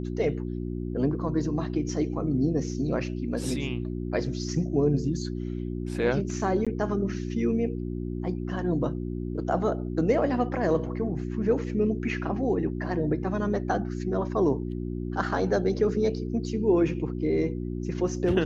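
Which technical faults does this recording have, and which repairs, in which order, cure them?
hum 60 Hz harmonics 6 -32 dBFS
6.65–6.67 gap 16 ms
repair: de-hum 60 Hz, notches 6; interpolate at 6.65, 16 ms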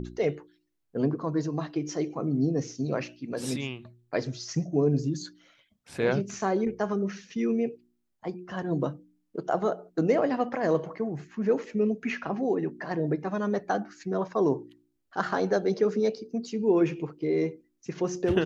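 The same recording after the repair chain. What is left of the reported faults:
none

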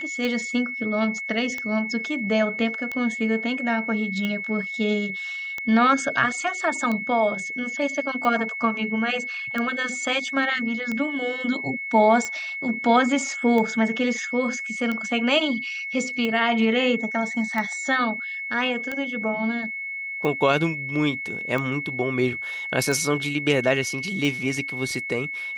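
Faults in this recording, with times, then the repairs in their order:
tick 45 rpm -15 dBFS
tone 2200 Hz -29 dBFS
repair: de-click; notch 2200 Hz, Q 30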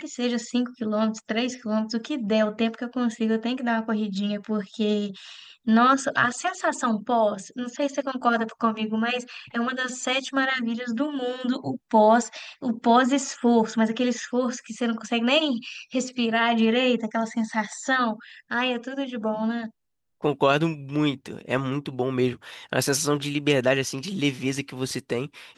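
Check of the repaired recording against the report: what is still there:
none

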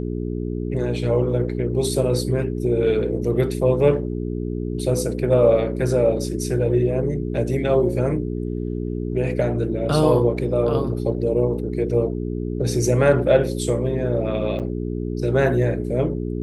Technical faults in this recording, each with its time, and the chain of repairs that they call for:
hum 60 Hz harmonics 7 -26 dBFS
14.59–14.6 gap 8 ms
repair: de-hum 60 Hz, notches 7; interpolate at 14.59, 8 ms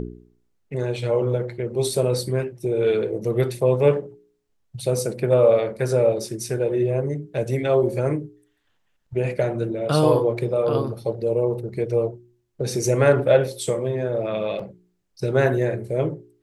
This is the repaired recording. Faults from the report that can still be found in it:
none

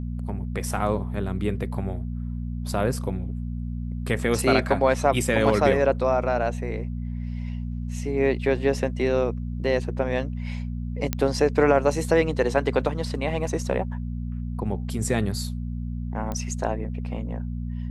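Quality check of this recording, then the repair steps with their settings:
hum 60 Hz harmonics 4 -30 dBFS
11.13 pop -9 dBFS
16.32 pop -17 dBFS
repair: de-click; de-hum 60 Hz, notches 4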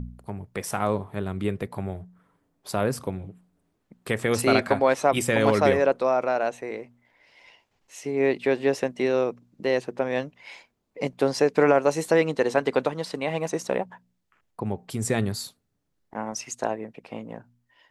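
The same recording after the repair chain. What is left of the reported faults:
none

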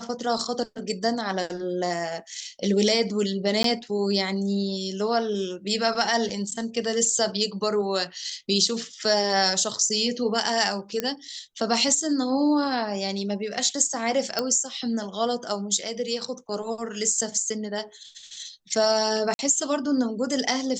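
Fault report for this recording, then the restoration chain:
3.63–3.64 gap 13 ms
11 pop -10 dBFS
14.39 pop -10 dBFS
19.34–19.39 gap 51 ms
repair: de-click; interpolate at 3.63, 13 ms; interpolate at 19.34, 51 ms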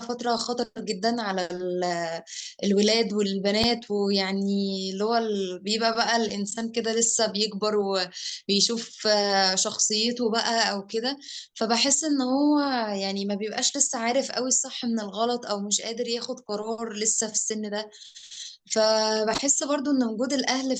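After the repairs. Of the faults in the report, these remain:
none

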